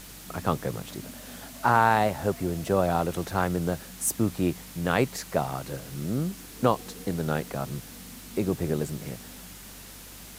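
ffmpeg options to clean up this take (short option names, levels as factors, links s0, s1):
-af "adeclick=t=4,bandreject=f=48.5:t=h:w=4,bandreject=f=97:t=h:w=4,bandreject=f=145.5:t=h:w=4,bandreject=f=194:t=h:w=4,bandreject=f=242.5:t=h:w=4,afwtdn=0.0056"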